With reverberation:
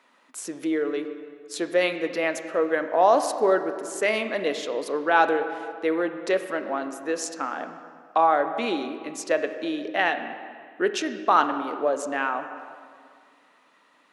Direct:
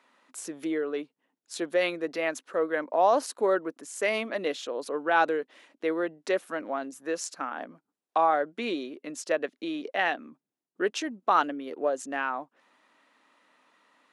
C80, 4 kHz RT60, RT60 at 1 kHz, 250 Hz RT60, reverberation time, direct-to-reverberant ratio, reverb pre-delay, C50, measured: 10.0 dB, 1.6 s, 2.1 s, 2.2 s, 2.1 s, 8.0 dB, 19 ms, 9.5 dB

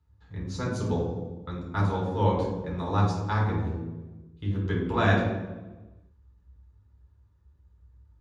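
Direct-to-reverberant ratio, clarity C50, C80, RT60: -4.5 dB, 3.0 dB, 5.5 dB, 1.2 s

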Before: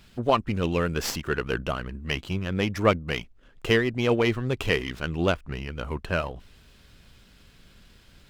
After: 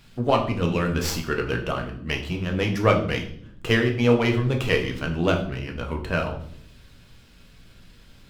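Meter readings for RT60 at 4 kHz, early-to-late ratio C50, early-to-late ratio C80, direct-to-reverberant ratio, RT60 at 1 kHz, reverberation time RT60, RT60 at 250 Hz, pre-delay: 0.55 s, 9.5 dB, 13.0 dB, 2.0 dB, 0.55 s, 0.65 s, 1.1 s, 6 ms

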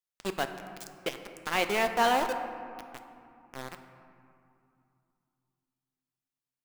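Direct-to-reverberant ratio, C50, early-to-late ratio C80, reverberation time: 7.0 dB, 8.5 dB, 9.0 dB, 2.6 s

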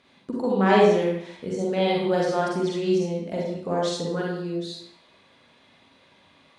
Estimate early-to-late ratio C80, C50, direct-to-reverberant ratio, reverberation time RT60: 3.5 dB, -1.5 dB, -4.0 dB, 0.65 s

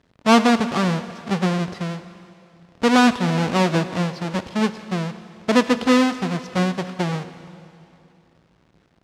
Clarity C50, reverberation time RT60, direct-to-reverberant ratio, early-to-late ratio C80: 12.0 dB, 2.8 s, 11.0 dB, 13.0 dB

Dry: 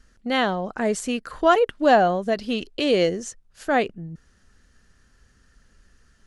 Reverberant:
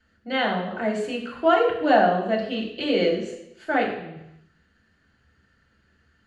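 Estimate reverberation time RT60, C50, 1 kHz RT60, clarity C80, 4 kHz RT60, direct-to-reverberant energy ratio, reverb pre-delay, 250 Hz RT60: 0.85 s, 6.0 dB, 0.85 s, 8.5 dB, 0.90 s, -3.5 dB, 3 ms, 0.85 s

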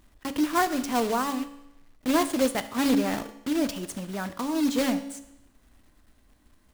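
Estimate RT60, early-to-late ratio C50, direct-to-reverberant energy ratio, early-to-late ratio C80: 0.85 s, 13.5 dB, 10.0 dB, 16.0 dB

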